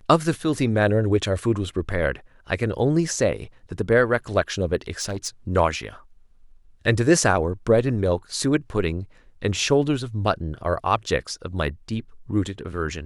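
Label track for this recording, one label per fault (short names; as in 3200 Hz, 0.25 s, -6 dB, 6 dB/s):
4.910000	5.280000	clipped -22.5 dBFS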